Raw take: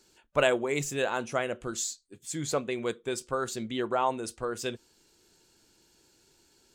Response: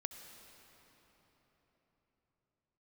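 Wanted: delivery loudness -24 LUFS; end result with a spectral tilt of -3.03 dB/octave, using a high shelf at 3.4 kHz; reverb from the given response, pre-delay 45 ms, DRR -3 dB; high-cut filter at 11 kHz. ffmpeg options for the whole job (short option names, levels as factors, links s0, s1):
-filter_complex "[0:a]lowpass=11000,highshelf=f=3400:g=3.5,asplit=2[s0][s1];[1:a]atrim=start_sample=2205,adelay=45[s2];[s1][s2]afir=irnorm=-1:irlink=0,volume=1.78[s3];[s0][s3]amix=inputs=2:normalize=0,volume=1.26"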